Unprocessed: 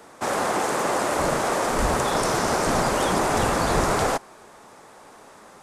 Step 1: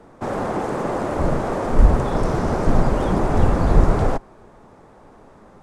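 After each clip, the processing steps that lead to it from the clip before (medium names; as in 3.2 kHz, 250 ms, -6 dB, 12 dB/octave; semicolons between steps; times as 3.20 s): tilt EQ -4 dB/octave; trim -3 dB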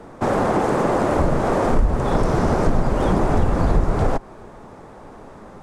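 compression 4:1, threshold -21 dBFS, peak gain reduction 13 dB; trim +6.5 dB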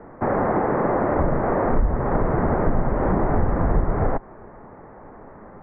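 elliptic low-pass 2 kHz, stop band 70 dB; trim -1.5 dB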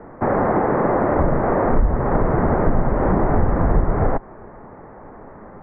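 distance through air 58 m; trim +3 dB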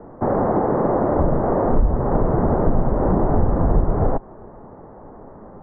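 low-pass 1 kHz 12 dB/octave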